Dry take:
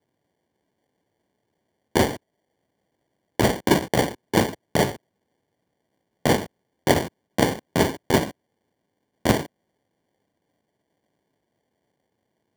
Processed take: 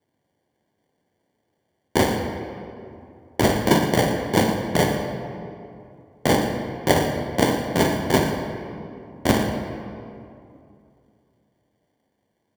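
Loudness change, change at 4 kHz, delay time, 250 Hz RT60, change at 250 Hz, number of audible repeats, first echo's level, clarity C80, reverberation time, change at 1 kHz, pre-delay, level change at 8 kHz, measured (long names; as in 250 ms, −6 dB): +1.0 dB, +1.5 dB, 117 ms, 2.9 s, +2.5 dB, 1, −13.5 dB, 5.0 dB, 2.6 s, +2.5 dB, 7 ms, +1.0 dB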